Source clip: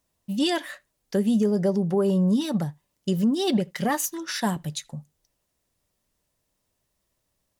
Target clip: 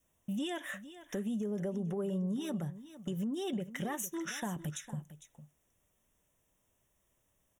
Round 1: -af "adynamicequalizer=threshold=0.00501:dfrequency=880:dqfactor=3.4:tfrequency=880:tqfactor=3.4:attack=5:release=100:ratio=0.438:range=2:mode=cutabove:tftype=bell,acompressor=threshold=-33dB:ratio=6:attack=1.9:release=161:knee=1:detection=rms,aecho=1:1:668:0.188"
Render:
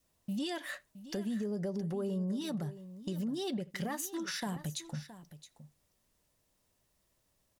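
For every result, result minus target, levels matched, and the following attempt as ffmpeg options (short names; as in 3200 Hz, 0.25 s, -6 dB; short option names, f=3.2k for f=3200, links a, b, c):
echo 0.214 s late; 4000 Hz band +3.5 dB
-af "adynamicequalizer=threshold=0.00501:dfrequency=880:dqfactor=3.4:tfrequency=880:tqfactor=3.4:attack=5:release=100:ratio=0.438:range=2:mode=cutabove:tftype=bell,acompressor=threshold=-33dB:ratio=6:attack=1.9:release=161:knee=1:detection=rms,aecho=1:1:454:0.188"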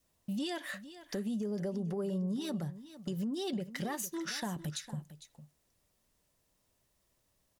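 4000 Hz band +3.5 dB
-af "adynamicequalizer=threshold=0.00501:dfrequency=880:dqfactor=3.4:tfrequency=880:tqfactor=3.4:attack=5:release=100:ratio=0.438:range=2:mode=cutabove:tftype=bell,acompressor=threshold=-33dB:ratio=6:attack=1.9:release=161:knee=1:detection=rms,asuperstop=centerf=4500:order=8:qfactor=2.4,aecho=1:1:454:0.188"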